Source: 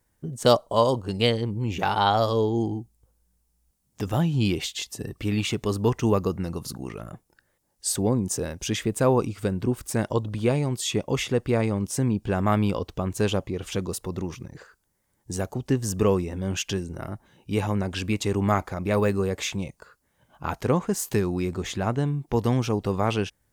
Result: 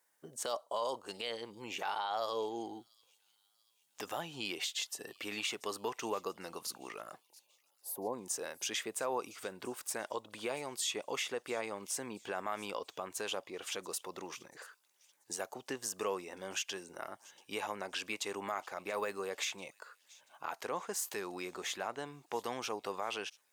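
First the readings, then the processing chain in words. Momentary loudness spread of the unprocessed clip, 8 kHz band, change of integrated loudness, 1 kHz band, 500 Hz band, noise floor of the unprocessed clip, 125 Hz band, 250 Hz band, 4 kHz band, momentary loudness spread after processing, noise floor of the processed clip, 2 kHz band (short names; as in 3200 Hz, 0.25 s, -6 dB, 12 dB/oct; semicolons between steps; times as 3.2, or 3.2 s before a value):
11 LU, -6.5 dB, -13.5 dB, -11.0 dB, -14.0 dB, -71 dBFS, -32.5 dB, -21.0 dB, -8.0 dB, 11 LU, -75 dBFS, -7.0 dB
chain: HPF 650 Hz 12 dB/oct; spectral gain 7.23–8.13, 1100–10000 Hz -23 dB; in parallel at +1.5 dB: compressor, threshold -39 dBFS, peak gain reduction 21 dB; on the sum: limiter -17 dBFS, peak gain reduction 10.5 dB; thin delay 0.685 s, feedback 48%, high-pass 3800 Hz, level -19 dB; gain -8 dB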